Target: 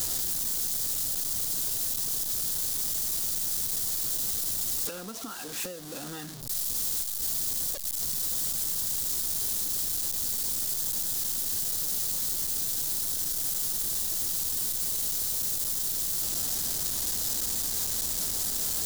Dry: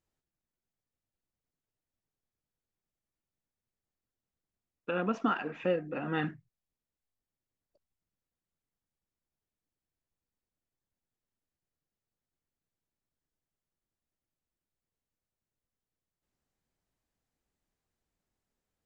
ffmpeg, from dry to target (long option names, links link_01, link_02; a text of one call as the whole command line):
ffmpeg -i in.wav -filter_complex "[0:a]aeval=exprs='val(0)+0.5*0.0251*sgn(val(0))':channel_layout=same,asplit=2[link_01][link_02];[link_02]acrusher=bits=3:mode=log:mix=0:aa=0.000001,volume=-6.5dB[link_03];[link_01][link_03]amix=inputs=2:normalize=0,acompressor=threshold=-34dB:ratio=5,aexciter=amount=6.3:drive=3.7:freq=3500,volume=-5dB" out.wav